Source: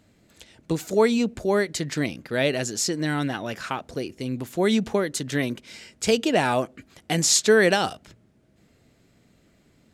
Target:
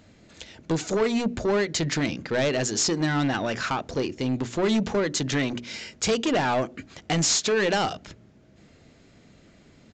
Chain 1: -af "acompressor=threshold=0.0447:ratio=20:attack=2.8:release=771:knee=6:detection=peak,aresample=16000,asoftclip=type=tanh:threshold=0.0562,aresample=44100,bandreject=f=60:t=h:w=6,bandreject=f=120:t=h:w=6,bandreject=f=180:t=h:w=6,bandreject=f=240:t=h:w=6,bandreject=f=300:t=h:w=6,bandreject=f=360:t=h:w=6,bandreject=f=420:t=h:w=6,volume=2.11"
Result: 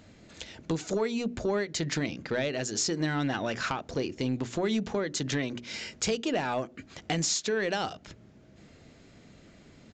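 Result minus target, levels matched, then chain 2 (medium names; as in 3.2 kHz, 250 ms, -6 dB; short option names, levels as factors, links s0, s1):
compression: peak gain reduction +10.5 dB
-af "acompressor=threshold=0.158:ratio=20:attack=2.8:release=771:knee=6:detection=peak,aresample=16000,asoftclip=type=tanh:threshold=0.0562,aresample=44100,bandreject=f=60:t=h:w=6,bandreject=f=120:t=h:w=6,bandreject=f=180:t=h:w=6,bandreject=f=240:t=h:w=6,bandreject=f=300:t=h:w=6,bandreject=f=360:t=h:w=6,bandreject=f=420:t=h:w=6,volume=2.11"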